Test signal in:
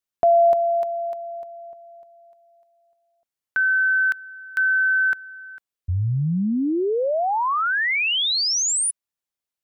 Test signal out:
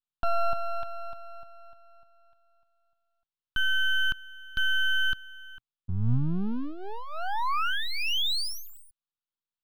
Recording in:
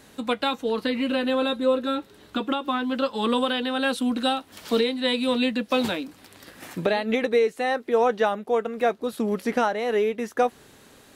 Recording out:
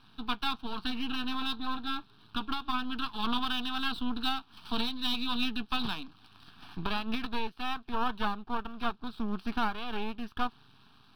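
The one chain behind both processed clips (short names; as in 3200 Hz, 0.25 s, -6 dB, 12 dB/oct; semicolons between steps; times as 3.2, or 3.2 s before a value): speaker cabinet 100–5000 Hz, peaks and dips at 120 Hz +6 dB, 340 Hz -10 dB, 550 Hz -7 dB; half-wave rectifier; fixed phaser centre 2000 Hz, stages 6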